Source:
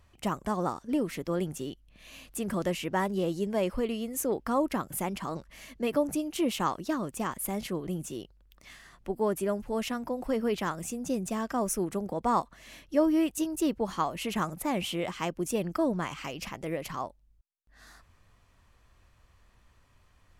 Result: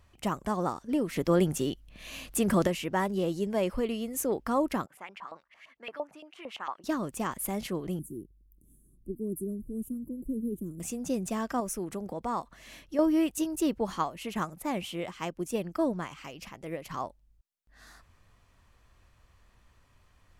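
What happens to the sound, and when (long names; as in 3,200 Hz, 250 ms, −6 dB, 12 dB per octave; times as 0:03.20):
0:01.16–0:02.67: clip gain +6.5 dB
0:04.86–0:06.84: auto-filter band-pass saw up 8.8 Hz 730–2,900 Hz
0:07.99–0:10.80: elliptic band-stop filter 340–9,900 Hz
0:11.60–0:12.99: downward compressor 1.5 to 1, threshold −38 dBFS
0:13.98–0:16.91: expander for the loud parts, over −37 dBFS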